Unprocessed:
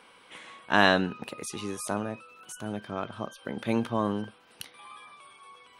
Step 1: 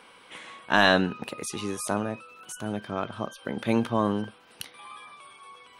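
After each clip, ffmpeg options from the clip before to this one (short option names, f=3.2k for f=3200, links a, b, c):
-af "apsyclip=9.5dB,volume=-6.5dB"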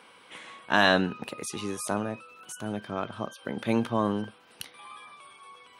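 -af "highpass=65,volume=-1.5dB"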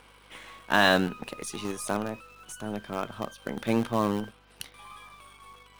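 -filter_complex "[0:a]aeval=exprs='val(0)+0.00112*(sin(2*PI*50*n/s)+sin(2*PI*2*50*n/s)/2+sin(2*PI*3*50*n/s)/3+sin(2*PI*4*50*n/s)/4+sin(2*PI*5*50*n/s)/5)':c=same,asplit=2[a][b];[b]acrusher=bits=5:dc=4:mix=0:aa=0.000001,volume=-7dB[c];[a][c]amix=inputs=2:normalize=0,volume=-3dB"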